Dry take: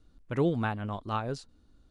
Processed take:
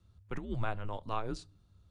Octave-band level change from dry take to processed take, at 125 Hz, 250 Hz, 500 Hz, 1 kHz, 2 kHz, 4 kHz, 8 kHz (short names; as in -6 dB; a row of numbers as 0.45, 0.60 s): -7.0, -10.5, -9.0, -4.5, -6.5, -4.5, -3.5 dB